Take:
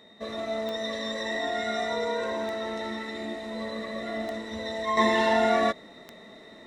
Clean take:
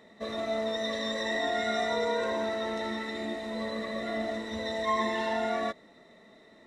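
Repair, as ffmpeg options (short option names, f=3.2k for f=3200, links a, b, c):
-af "adeclick=t=4,bandreject=f=3.7k:w=30,asetnsamples=n=441:p=0,asendcmd='4.97 volume volume -7.5dB',volume=0dB"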